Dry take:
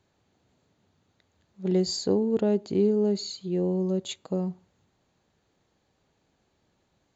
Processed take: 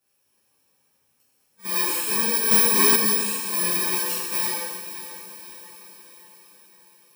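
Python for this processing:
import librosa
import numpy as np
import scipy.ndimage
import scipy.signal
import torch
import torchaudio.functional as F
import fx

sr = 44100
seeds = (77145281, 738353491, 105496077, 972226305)

p1 = fx.bit_reversed(x, sr, seeds[0], block=64)
p2 = fx.highpass(p1, sr, hz=730.0, slope=6)
p3 = fx.rider(p2, sr, range_db=10, speed_s=0.5)
p4 = p2 + F.gain(torch.from_numpy(p3), 1.0).numpy()
p5 = fx.chorus_voices(p4, sr, voices=6, hz=0.61, base_ms=11, depth_ms=3.6, mix_pct=55)
p6 = p5 + fx.echo_diffused(p5, sr, ms=563, feedback_pct=53, wet_db=-12.0, dry=0)
p7 = fx.rev_gated(p6, sr, seeds[1], gate_ms=430, shape='falling', drr_db=-7.0)
p8 = fx.leveller(p7, sr, passes=2, at=(2.51, 2.96))
y = F.gain(torch.from_numpy(p8), -5.5).numpy()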